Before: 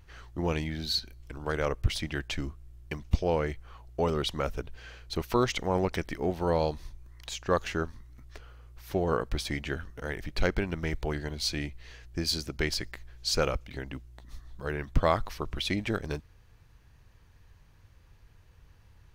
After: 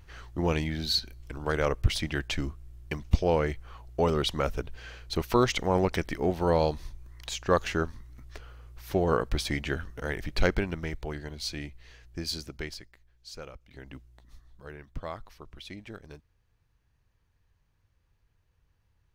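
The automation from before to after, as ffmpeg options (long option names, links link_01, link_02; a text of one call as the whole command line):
ffmpeg -i in.wav -af "volume=13.5dB,afade=type=out:start_time=10.47:duration=0.48:silence=0.473151,afade=type=out:start_time=12.43:duration=0.46:silence=0.251189,afade=type=in:start_time=13.61:duration=0.34:silence=0.281838,afade=type=out:start_time=13.95:duration=0.93:silence=0.398107" out.wav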